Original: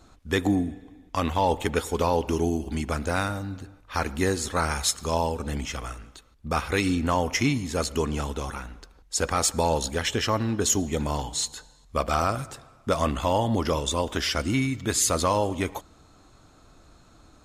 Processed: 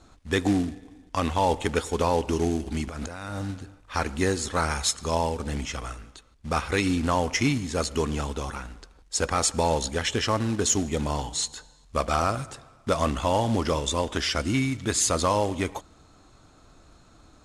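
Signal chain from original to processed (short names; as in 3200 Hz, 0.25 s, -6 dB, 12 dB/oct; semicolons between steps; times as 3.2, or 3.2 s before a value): 2.87–3.51 negative-ratio compressor -34 dBFS, ratio -1; short-mantissa float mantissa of 2-bit; LPF 10000 Hz 24 dB/oct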